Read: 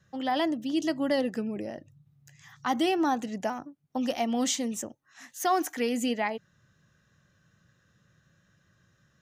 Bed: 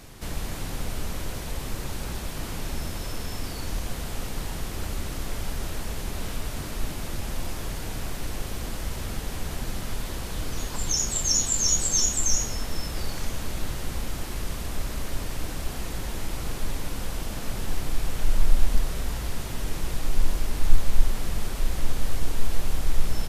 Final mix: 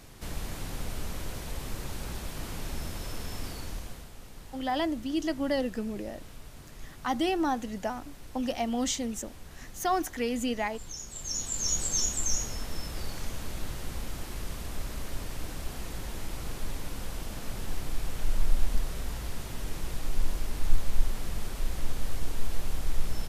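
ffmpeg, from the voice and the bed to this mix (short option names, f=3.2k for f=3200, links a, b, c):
-filter_complex "[0:a]adelay=4400,volume=-2dB[a];[1:a]volume=5.5dB,afade=t=out:st=3.47:d=0.64:silence=0.281838,afade=t=in:st=11.1:d=0.71:silence=0.316228[b];[a][b]amix=inputs=2:normalize=0"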